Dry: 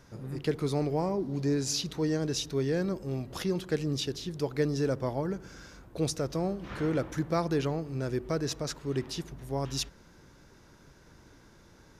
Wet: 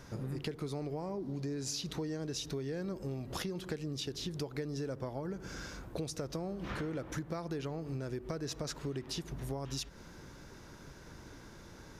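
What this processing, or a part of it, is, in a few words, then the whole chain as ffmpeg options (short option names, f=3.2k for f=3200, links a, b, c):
serial compression, leveller first: -af "acompressor=threshold=-34dB:ratio=2,acompressor=threshold=-40dB:ratio=6,volume=4.5dB"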